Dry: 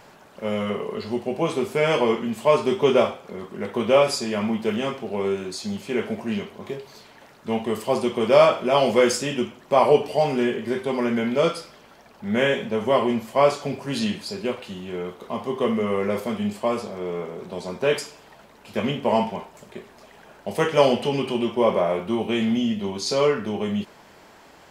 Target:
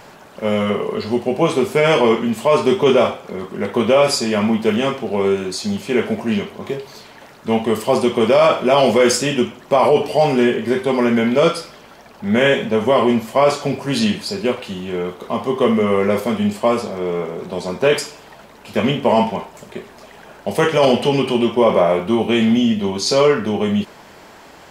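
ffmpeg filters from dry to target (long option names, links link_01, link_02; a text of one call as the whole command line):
ffmpeg -i in.wav -af "alimiter=limit=-12dB:level=0:latency=1:release=10,volume=7.5dB" out.wav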